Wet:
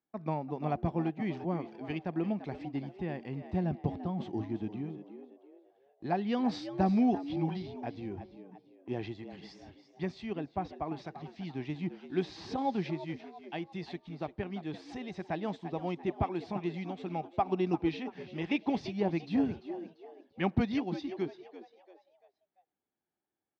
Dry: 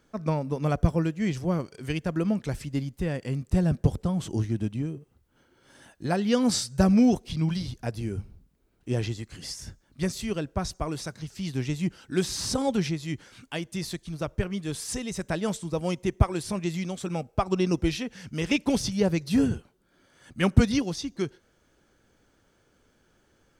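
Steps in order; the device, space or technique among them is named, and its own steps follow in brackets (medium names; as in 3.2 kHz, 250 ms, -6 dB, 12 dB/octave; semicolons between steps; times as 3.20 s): bass shelf 200 Hz -3 dB; gate -47 dBFS, range -20 dB; frequency-shifting delay pedal into a guitar cabinet (frequency-shifting echo 342 ms, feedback 37%, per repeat +90 Hz, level -13 dB; cabinet simulation 100–3600 Hz, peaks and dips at 120 Hz -5 dB, 340 Hz +4 dB, 510 Hz -6 dB, 780 Hz +9 dB, 1.4 kHz -7 dB, 3 kHz -4 dB); 10.33–10.97 s: treble shelf 4.1 kHz -10.5 dB; trim -6 dB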